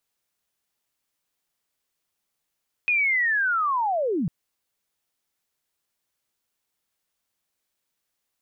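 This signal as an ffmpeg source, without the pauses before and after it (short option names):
-f lavfi -i "aevalsrc='pow(10,(-18.5-3.5*t/1.4)/20)*sin(2*PI*(2500*t-2360*t*t/(2*1.4)))':d=1.4:s=44100"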